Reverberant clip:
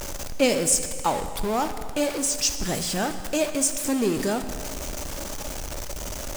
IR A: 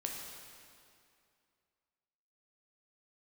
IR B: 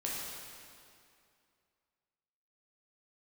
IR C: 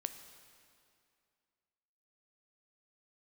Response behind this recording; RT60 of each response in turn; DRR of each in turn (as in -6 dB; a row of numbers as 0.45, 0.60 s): C; 2.4, 2.4, 2.4 s; -0.5, -5.5, 8.5 dB